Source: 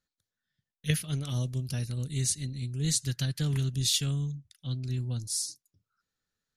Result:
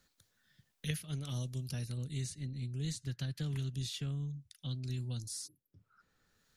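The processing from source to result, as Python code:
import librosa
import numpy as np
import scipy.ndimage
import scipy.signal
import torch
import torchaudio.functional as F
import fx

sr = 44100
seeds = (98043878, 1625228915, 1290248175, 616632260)

y = fx.high_shelf(x, sr, hz=3800.0, db=-10.5, at=(1.97, 4.36))
y = fx.spec_erase(y, sr, start_s=5.47, length_s=0.26, low_hz=590.0, high_hz=11000.0)
y = fx.band_squash(y, sr, depth_pct=70)
y = y * librosa.db_to_amplitude(-7.5)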